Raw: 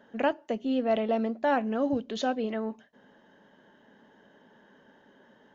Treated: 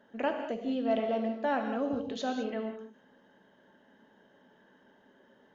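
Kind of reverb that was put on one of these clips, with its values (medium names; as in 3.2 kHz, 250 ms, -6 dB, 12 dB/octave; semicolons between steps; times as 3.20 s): gated-style reverb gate 230 ms flat, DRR 4 dB; trim -5 dB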